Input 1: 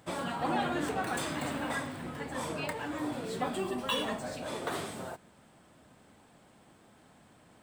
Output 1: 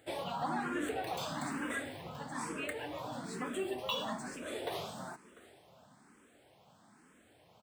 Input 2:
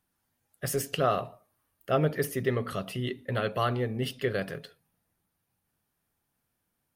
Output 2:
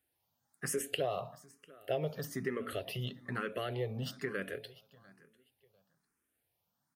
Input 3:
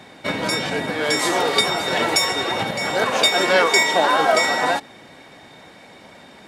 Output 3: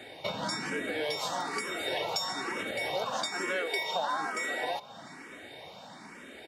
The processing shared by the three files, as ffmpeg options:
ffmpeg -i in.wav -filter_complex "[0:a]highpass=47,lowshelf=frequency=120:gain=-6,acompressor=threshold=-29dB:ratio=4,asplit=2[link_01][link_02];[link_02]aecho=0:1:697|1394:0.0891|0.0187[link_03];[link_01][link_03]amix=inputs=2:normalize=0,asplit=2[link_04][link_05];[link_05]afreqshift=1.1[link_06];[link_04][link_06]amix=inputs=2:normalize=1" out.wav

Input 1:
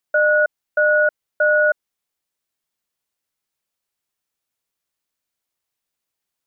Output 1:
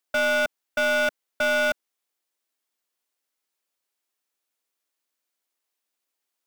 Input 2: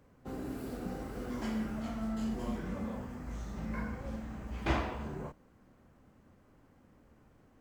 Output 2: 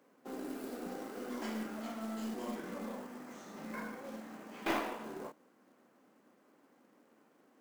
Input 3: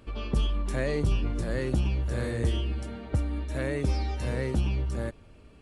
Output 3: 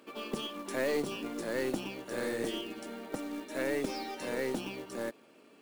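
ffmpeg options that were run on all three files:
ffmpeg -i in.wav -af "highpass=frequency=240:width=0.5412,highpass=frequency=240:width=1.3066,asoftclip=type=tanh:threshold=-20dB,aeval=exprs='0.1*(cos(1*acos(clip(val(0)/0.1,-1,1)))-cos(1*PI/2))+0.0126*(cos(2*acos(clip(val(0)/0.1,-1,1)))-cos(2*PI/2))+0.0126*(cos(4*acos(clip(val(0)/0.1,-1,1)))-cos(4*PI/2))+0.002*(cos(6*acos(clip(val(0)/0.1,-1,1)))-cos(6*PI/2))+0.000794*(cos(7*acos(clip(val(0)/0.1,-1,1)))-cos(7*PI/2))':channel_layout=same,acrusher=bits=4:mode=log:mix=0:aa=0.000001" out.wav

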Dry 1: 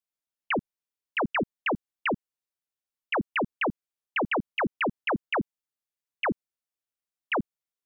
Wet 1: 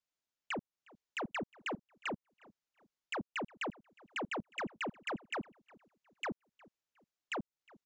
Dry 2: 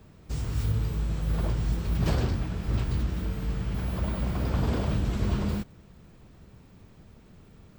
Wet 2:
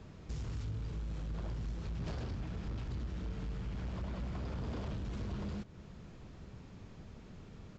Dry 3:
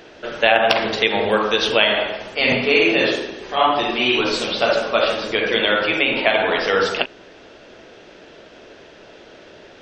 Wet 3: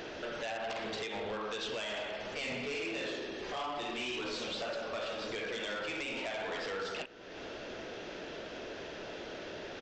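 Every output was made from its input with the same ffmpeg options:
ffmpeg -i in.wav -filter_complex "[0:a]acompressor=threshold=-38dB:ratio=3,aresample=16000,asoftclip=type=tanh:threshold=-34.5dB,aresample=44100,asplit=2[link_01][link_02];[link_02]adelay=360,lowpass=frequency=2400:poles=1,volume=-22.5dB,asplit=2[link_03][link_04];[link_04]adelay=360,lowpass=frequency=2400:poles=1,volume=0.37,asplit=2[link_05][link_06];[link_06]adelay=360,lowpass=frequency=2400:poles=1,volume=0.37[link_07];[link_01][link_03][link_05][link_07]amix=inputs=4:normalize=0,volume=1dB" out.wav

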